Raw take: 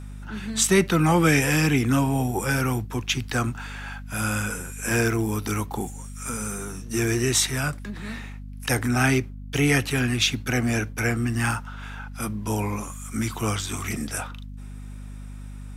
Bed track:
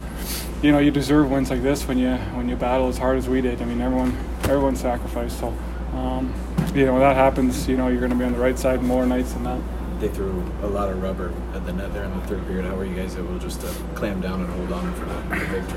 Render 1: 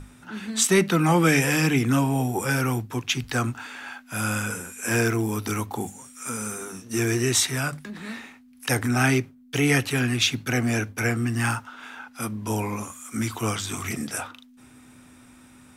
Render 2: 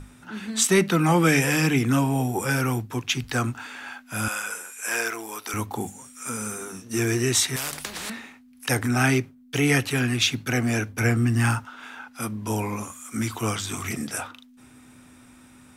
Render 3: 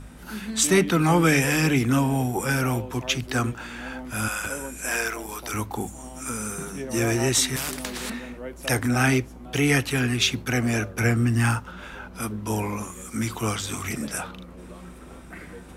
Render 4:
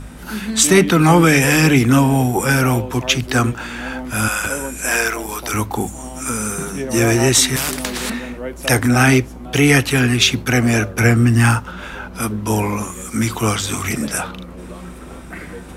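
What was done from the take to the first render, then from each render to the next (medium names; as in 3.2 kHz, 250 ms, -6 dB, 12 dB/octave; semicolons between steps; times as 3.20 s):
hum notches 50/100/150/200 Hz
4.28–5.54 s: high-pass 650 Hz; 7.56–8.10 s: spectrum-flattening compressor 4:1; 10.93–11.65 s: bass shelf 220 Hz +6.5 dB
add bed track -16.5 dB
trim +8.5 dB; peak limiter -1 dBFS, peak gain reduction 3 dB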